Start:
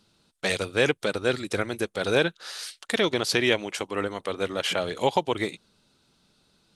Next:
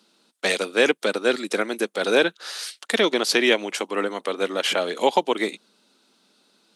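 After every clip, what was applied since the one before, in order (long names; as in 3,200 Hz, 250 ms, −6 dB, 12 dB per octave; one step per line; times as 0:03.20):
Butterworth high-pass 210 Hz 36 dB per octave
level +4 dB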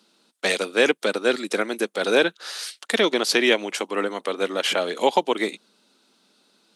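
no processing that can be heard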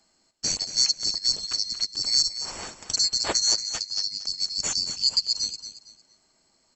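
neighbouring bands swapped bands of 4,000 Hz
on a send: repeating echo 229 ms, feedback 29%, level −11.5 dB
on the sum: downsampling to 22,050 Hz
level −4 dB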